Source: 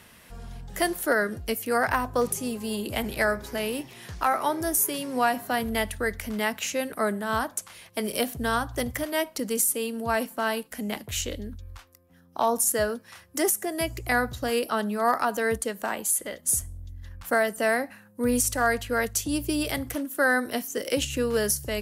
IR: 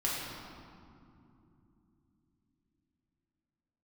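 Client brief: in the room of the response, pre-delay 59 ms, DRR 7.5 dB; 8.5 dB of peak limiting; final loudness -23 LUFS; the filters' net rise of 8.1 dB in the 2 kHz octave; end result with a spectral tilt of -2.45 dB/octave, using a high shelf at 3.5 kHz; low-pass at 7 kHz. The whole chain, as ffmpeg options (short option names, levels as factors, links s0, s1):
-filter_complex "[0:a]lowpass=7000,equalizer=f=2000:t=o:g=8.5,highshelf=f=3500:g=7.5,alimiter=limit=0.188:level=0:latency=1,asplit=2[s0][s1];[1:a]atrim=start_sample=2205,adelay=59[s2];[s1][s2]afir=irnorm=-1:irlink=0,volume=0.188[s3];[s0][s3]amix=inputs=2:normalize=0,volume=1.33"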